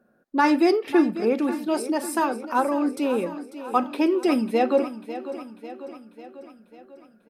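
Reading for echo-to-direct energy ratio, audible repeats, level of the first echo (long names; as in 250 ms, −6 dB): −11.5 dB, 5, −13.0 dB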